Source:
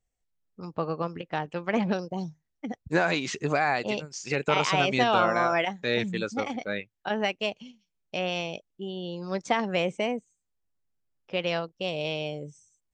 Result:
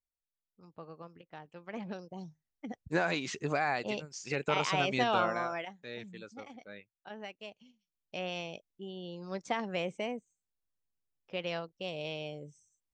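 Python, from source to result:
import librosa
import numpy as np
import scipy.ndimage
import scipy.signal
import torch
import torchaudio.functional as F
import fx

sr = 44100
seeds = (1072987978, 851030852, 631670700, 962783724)

y = fx.gain(x, sr, db=fx.line((1.44, -18.0), (2.81, -6.0), (5.2, -6.0), (5.82, -17.0), (7.47, -17.0), (8.19, -8.0)))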